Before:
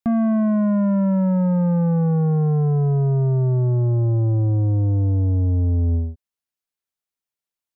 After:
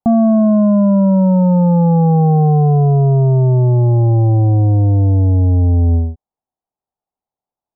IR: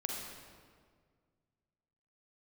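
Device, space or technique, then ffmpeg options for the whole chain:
under water: -af "lowpass=frequency=1000:width=0.5412,lowpass=frequency=1000:width=1.3066,equalizer=frequency=780:width_type=o:width=0.41:gain=10.5,volume=7dB"

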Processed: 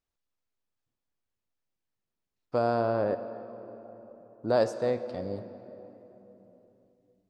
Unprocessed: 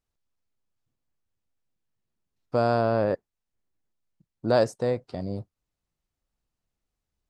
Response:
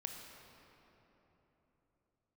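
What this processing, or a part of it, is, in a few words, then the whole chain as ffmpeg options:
filtered reverb send: -filter_complex "[0:a]asettb=1/sr,asplit=3[link_01][link_02][link_03];[link_01]atrim=end=2.584[link_04];[link_02]atrim=start=2.58:end=4.6,asetpts=PTS-STARTPTS,afade=type=in:duration=0.004:curve=qsin,afade=type=out:start_time=2.016:duration=0.004:curve=qsin,equalizer=frequency=2900:width_type=o:width=2.3:gain=-5[link_05];[link_03]atrim=start=4.596[link_06];[link_04][link_05]acrossfade=duration=0.004:curve1=hsin:curve2=qsin[link_07];[link_07][link_06]acrossfade=duration=0.004:curve1=qsin:curve2=hsin,asplit=2[link_08][link_09];[link_09]highpass=220,lowpass=7800[link_10];[1:a]atrim=start_sample=2205[link_11];[link_10][link_11]afir=irnorm=-1:irlink=0,volume=0dB[link_12];[link_08][link_12]amix=inputs=2:normalize=0,volume=-6.5dB"

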